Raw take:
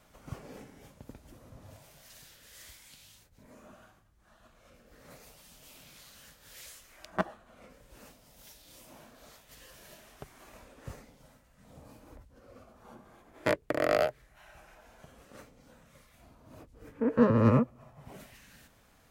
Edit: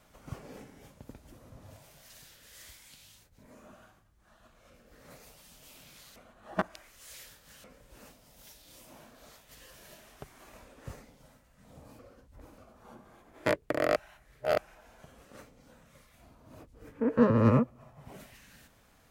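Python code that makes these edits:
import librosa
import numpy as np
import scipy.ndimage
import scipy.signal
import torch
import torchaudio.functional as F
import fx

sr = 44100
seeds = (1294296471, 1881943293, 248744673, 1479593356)

y = fx.edit(x, sr, fx.reverse_span(start_s=6.16, length_s=1.48),
    fx.reverse_span(start_s=11.99, length_s=0.59),
    fx.reverse_span(start_s=13.96, length_s=0.62), tone=tone)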